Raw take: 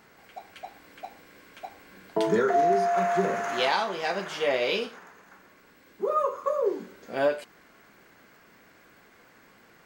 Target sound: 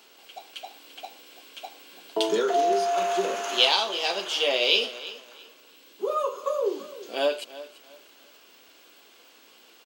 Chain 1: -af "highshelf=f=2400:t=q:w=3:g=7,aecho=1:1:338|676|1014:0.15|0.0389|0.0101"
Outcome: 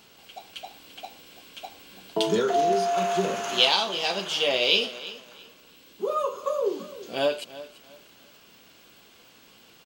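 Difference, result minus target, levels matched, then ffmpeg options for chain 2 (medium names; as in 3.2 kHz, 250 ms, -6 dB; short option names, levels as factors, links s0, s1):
250 Hz band +2.5 dB
-af "highpass=f=280:w=0.5412,highpass=f=280:w=1.3066,highshelf=f=2400:t=q:w=3:g=7,aecho=1:1:338|676|1014:0.15|0.0389|0.0101"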